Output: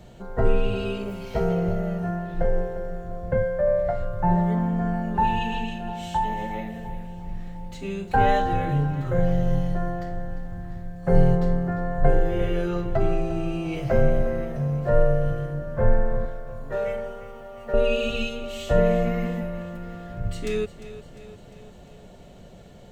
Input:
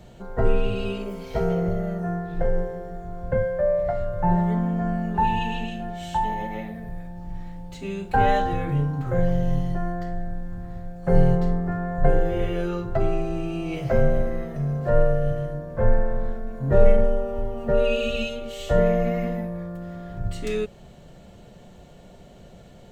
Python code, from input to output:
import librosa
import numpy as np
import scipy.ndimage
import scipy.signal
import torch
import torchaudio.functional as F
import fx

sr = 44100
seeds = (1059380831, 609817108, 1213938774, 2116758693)

y = fx.highpass(x, sr, hz=1300.0, slope=6, at=(16.25, 17.74))
y = fx.echo_feedback(y, sr, ms=351, feedback_pct=59, wet_db=-14.5)